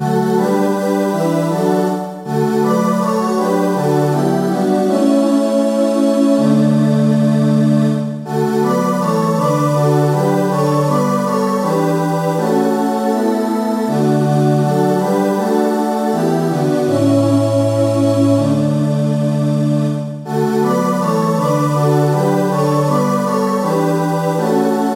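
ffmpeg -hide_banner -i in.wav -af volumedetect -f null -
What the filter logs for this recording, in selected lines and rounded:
mean_volume: -14.2 dB
max_volume: -1.7 dB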